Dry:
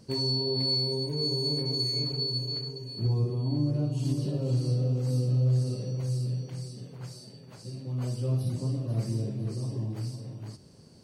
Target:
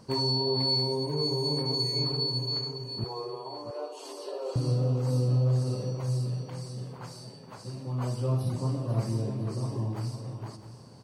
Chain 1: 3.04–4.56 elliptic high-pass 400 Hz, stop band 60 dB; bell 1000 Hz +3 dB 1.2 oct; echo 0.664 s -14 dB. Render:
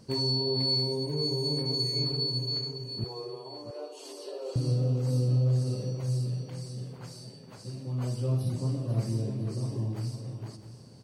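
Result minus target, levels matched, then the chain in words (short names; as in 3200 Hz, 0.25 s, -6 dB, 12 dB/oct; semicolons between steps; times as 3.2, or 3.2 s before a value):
1000 Hz band -7.5 dB
3.04–4.56 elliptic high-pass 400 Hz, stop band 60 dB; bell 1000 Hz +12 dB 1.2 oct; echo 0.664 s -14 dB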